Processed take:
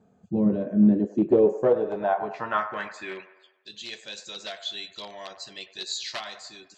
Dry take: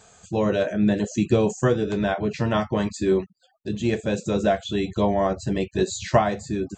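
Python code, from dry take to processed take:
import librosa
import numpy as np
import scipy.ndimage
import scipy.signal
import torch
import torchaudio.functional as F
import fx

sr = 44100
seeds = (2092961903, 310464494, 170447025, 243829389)

p1 = np.minimum(x, 2.0 * 10.0 ** (-13.5 / 20.0) - x)
p2 = fx.cheby_harmonics(p1, sr, harmonics=(8,), levels_db=(-42,), full_scale_db=-6.0)
p3 = fx.filter_sweep_bandpass(p2, sr, from_hz=230.0, to_hz=4200.0, start_s=0.81, end_s=3.75, q=2.6)
p4 = p3 + fx.echo_wet_bandpass(p3, sr, ms=98, feedback_pct=51, hz=1000.0, wet_db=-10.5, dry=0)
y = p4 * 10.0 ** (5.5 / 20.0)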